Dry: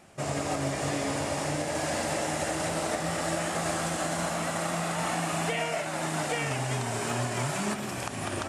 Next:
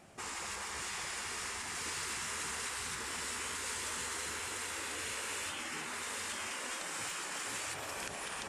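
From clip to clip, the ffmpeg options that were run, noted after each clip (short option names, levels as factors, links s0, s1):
-af "afftfilt=real='re*lt(hypot(re,im),0.0562)':imag='im*lt(hypot(re,im),0.0562)':win_size=1024:overlap=0.75,volume=0.668"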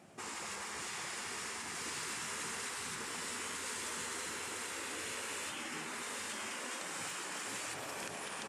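-af "highpass=160,lowshelf=f=330:g=7.5,aecho=1:1:97:0.282,volume=0.75"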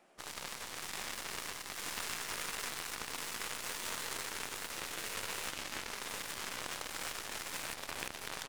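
-af "highpass=370,equalizer=f=7600:w=1.2:g=-5.5,aeval=exprs='0.0447*(cos(1*acos(clip(val(0)/0.0447,-1,1)))-cos(1*PI/2))+0.0158*(cos(2*acos(clip(val(0)/0.0447,-1,1)))-cos(2*PI/2))+0.0126*(cos(5*acos(clip(val(0)/0.0447,-1,1)))-cos(5*PI/2))+0.001*(cos(6*acos(clip(val(0)/0.0447,-1,1)))-cos(6*PI/2))+0.0178*(cos(7*acos(clip(val(0)/0.0447,-1,1)))-cos(7*PI/2))':c=same,volume=1.68"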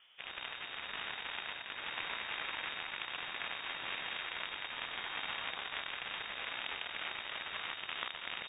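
-af "lowpass=f=3100:t=q:w=0.5098,lowpass=f=3100:t=q:w=0.6013,lowpass=f=3100:t=q:w=0.9,lowpass=f=3100:t=q:w=2.563,afreqshift=-3700,volume=1.33"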